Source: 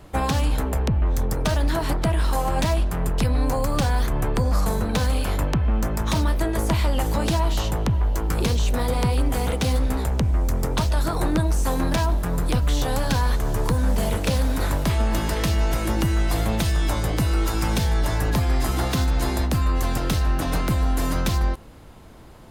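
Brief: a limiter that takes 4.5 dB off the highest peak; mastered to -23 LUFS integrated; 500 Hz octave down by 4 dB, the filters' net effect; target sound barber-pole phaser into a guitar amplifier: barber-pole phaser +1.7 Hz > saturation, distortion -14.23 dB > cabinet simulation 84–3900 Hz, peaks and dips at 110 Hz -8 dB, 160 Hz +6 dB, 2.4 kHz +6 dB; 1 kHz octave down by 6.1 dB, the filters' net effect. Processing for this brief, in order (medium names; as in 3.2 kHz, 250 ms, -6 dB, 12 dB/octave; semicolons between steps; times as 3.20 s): peaking EQ 500 Hz -3 dB; peaking EQ 1 kHz -7 dB; peak limiter -16 dBFS; barber-pole phaser +1.7 Hz; saturation -24 dBFS; cabinet simulation 84–3900 Hz, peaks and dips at 110 Hz -8 dB, 160 Hz +6 dB, 2.4 kHz +6 dB; trim +11.5 dB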